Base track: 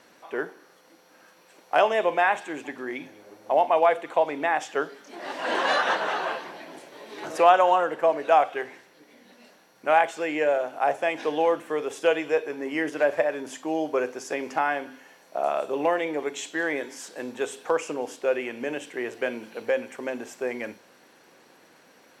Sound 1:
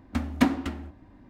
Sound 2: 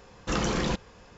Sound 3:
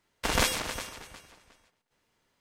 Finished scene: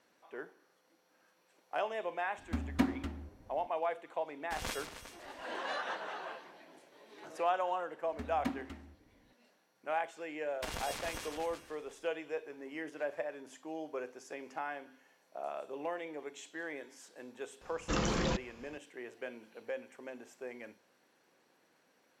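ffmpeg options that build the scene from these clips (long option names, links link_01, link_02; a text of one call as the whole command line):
ffmpeg -i bed.wav -i cue0.wav -i cue1.wav -i cue2.wav -filter_complex "[1:a]asplit=2[link_01][link_02];[3:a]asplit=2[link_03][link_04];[0:a]volume=-15dB[link_05];[link_01]lowshelf=frequency=180:gain=5[link_06];[link_04]acompressor=threshold=-32dB:ratio=6:attack=3.2:release=140:knee=1:detection=peak[link_07];[2:a]acontrast=39[link_08];[link_06]atrim=end=1.29,asetpts=PTS-STARTPTS,volume=-10dB,afade=type=in:duration=0.004:curve=hsin,afade=type=out:start_time=1.286:duration=0.004:curve=hsin,adelay=2380[link_09];[link_03]atrim=end=2.4,asetpts=PTS-STARTPTS,volume=-14.5dB,afade=type=in:duration=0.004:curve=hsin,afade=type=out:start_time=2.396:duration=0.004:curve=hsin,adelay=4270[link_10];[link_02]atrim=end=1.29,asetpts=PTS-STARTPTS,volume=-15.5dB,afade=type=in:duration=0.004:curve=hsin,afade=type=out:start_time=1.286:duration=0.004:curve=hsin,adelay=8040[link_11];[link_07]atrim=end=2.4,asetpts=PTS-STARTPTS,volume=-4dB,afade=type=in:duration=0.004:curve=hsin,afade=type=out:start_time=2.396:duration=0.004:curve=hsin,adelay=10390[link_12];[link_08]atrim=end=1.17,asetpts=PTS-STARTPTS,volume=-10.5dB,afade=type=in:duration=0.004:curve=hsin,afade=type=out:start_time=1.166:duration=0.004:curve=hsin,adelay=17610[link_13];[link_05][link_09][link_10][link_11][link_12][link_13]amix=inputs=6:normalize=0" out.wav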